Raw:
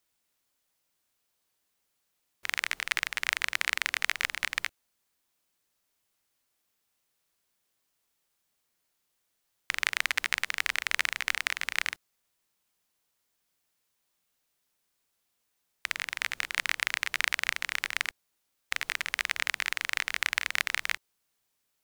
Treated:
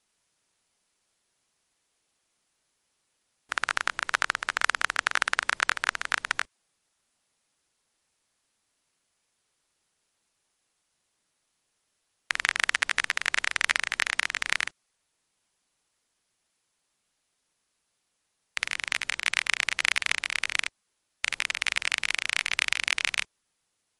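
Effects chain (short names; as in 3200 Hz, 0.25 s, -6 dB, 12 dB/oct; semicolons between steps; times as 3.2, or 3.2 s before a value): speed glide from 66% -> 116%; gain +3.5 dB; MP3 48 kbps 48000 Hz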